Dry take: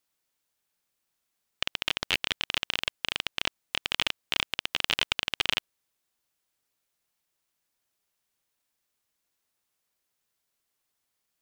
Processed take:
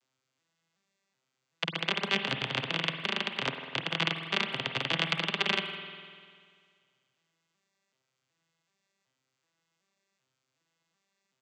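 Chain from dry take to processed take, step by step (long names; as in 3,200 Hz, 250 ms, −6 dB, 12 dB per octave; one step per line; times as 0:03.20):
vocoder with an arpeggio as carrier major triad, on C3, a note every 377 ms
in parallel at −1 dB: brickwall limiter −18.5 dBFS, peak gain reduction 7 dB
on the sum: tilt shelving filter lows −4 dB
far-end echo of a speakerphone 160 ms, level −19 dB
spring reverb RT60 2 s, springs 49 ms, chirp 45 ms, DRR 6.5 dB
level −5.5 dB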